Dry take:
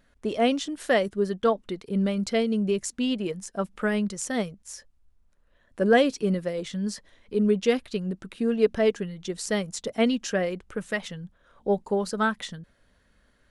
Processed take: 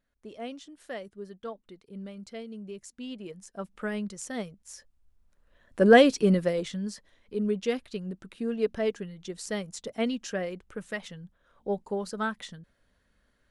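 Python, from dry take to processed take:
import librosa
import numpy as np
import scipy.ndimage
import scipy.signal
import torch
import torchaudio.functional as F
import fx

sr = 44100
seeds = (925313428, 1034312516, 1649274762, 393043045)

y = fx.gain(x, sr, db=fx.line((2.68, -16.0), (3.81, -7.0), (4.45, -7.0), (5.85, 3.0), (6.51, 3.0), (6.91, -6.0)))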